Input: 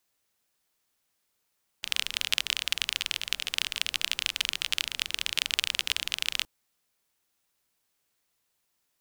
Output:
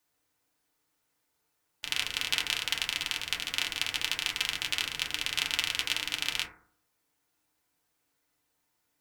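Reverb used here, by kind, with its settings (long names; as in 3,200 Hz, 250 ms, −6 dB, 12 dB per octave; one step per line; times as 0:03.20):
feedback delay network reverb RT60 0.55 s, low-frequency decay 1.1×, high-frequency decay 0.25×, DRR −3 dB
level −3 dB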